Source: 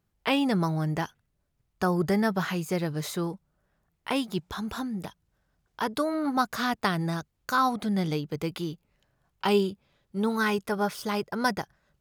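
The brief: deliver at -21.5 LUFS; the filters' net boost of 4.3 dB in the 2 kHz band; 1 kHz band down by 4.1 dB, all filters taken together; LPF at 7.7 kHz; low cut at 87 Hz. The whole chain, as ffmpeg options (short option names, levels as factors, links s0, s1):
-af "highpass=87,lowpass=7700,equalizer=f=1000:t=o:g=-8,equalizer=f=2000:t=o:g=9,volume=2.24"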